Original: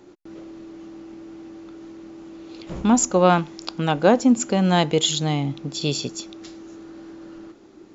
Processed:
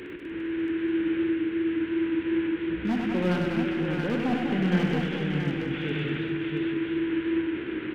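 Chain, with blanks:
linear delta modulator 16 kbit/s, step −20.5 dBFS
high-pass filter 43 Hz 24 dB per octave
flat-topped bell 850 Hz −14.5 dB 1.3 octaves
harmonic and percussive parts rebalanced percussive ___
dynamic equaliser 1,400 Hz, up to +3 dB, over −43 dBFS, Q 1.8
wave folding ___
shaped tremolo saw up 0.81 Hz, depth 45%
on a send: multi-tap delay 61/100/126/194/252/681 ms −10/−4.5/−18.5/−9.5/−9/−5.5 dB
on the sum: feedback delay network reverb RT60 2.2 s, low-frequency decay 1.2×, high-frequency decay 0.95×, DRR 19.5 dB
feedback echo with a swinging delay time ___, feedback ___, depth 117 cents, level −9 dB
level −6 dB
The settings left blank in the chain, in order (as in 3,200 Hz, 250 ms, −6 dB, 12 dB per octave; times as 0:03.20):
−3 dB, −13.5 dBFS, 201 ms, 67%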